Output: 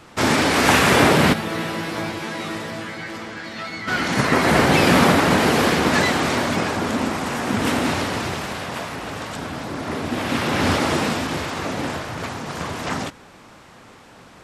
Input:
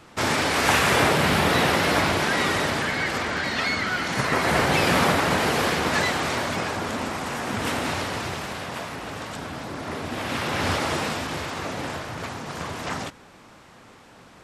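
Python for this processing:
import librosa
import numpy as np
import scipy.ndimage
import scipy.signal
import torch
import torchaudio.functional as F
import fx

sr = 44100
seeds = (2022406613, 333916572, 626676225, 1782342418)

y = fx.dynamic_eq(x, sr, hz=250.0, q=1.1, threshold_db=-37.0, ratio=4.0, max_db=6)
y = fx.resonator_bank(y, sr, root=45, chord='fifth', decay_s=0.22, at=(1.32, 3.87), fade=0.02)
y = y * 10.0 ** (3.5 / 20.0)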